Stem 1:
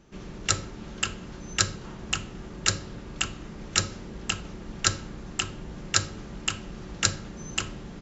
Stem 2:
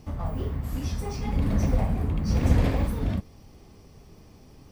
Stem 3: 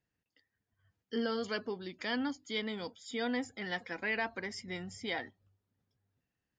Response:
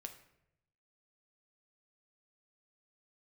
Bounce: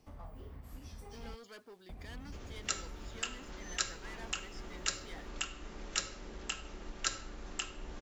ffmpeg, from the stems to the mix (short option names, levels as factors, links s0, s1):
-filter_complex "[0:a]adelay=2200,volume=0.944,asplit=2[s0][s1];[s1]volume=0.501[s2];[1:a]volume=0.266,asplit=3[s3][s4][s5];[s3]atrim=end=1.35,asetpts=PTS-STARTPTS,afade=t=out:st=1.346:d=0.004:c=hsin[s6];[s4]atrim=start=1.35:end=1.89,asetpts=PTS-STARTPTS,volume=0[s7];[s5]atrim=start=1.89,asetpts=PTS-STARTPTS,afade=t=in:d=0.004:c=hsin[s8];[s6][s7][s8]concat=n=3:v=0:a=1[s9];[2:a]acrusher=bits=9:mix=0:aa=0.000001,asoftclip=type=hard:threshold=0.0178,volume=0.266[s10];[s0][s9]amix=inputs=2:normalize=0,acrossover=split=130[s11][s12];[s12]acompressor=threshold=0.00316:ratio=2[s13];[s11][s13]amix=inputs=2:normalize=0,alimiter=level_in=2.99:limit=0.0631:level=0:latency=1:release=265,volume=0.335,volume=1[s14];[3:a]atrim=start_sample=2205[s15];[s2][s15]afir=irnorm=-1:irlink=0[s16];[s10][s14][s16]amix=inputs=3:normalize=0,equalizer=f=110:t=o:w=2.3:g=-9.5"